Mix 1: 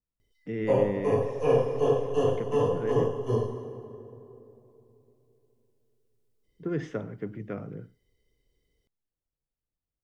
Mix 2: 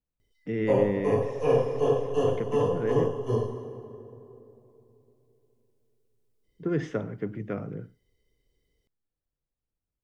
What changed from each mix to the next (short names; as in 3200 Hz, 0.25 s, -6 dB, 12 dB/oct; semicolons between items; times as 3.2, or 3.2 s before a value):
speech +3.0 dB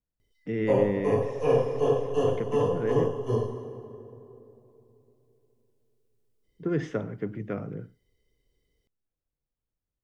none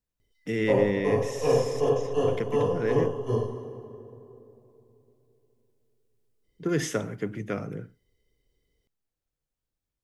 speech: remove tape spacing loss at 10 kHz 33 dB